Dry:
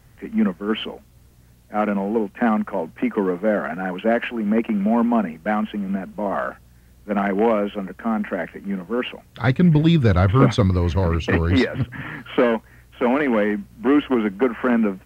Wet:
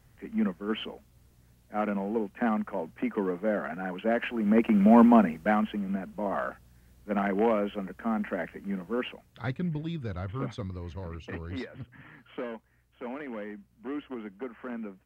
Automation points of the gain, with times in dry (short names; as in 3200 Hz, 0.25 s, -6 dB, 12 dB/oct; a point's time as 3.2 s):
4.06 s -8.5 dB
5 s +1.5 dB
5.89 s -7 dB
8.95 s -7 dB
9.87 s -19 dB